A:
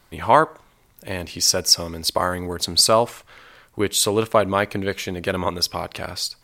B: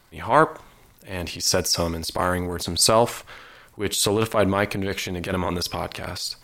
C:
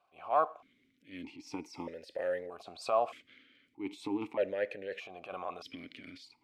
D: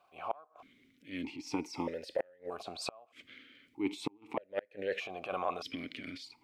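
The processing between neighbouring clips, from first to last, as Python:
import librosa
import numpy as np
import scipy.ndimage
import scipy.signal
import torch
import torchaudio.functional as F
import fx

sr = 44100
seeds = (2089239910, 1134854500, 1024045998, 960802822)

y1 = fx.transient(x, sr, attack_db=-10, sustain_db=6)
y2 = fx.vowel_held(y1, sr, hz=1.6)
y2 = y2 * librosa.db_to_amplitude(-3.0)
y3 = fx.gate_flip(y2, sr, shuts_db=-26.0, range_db=-33)
y3 = y3 * librosa.db_to_amplitude(5.5)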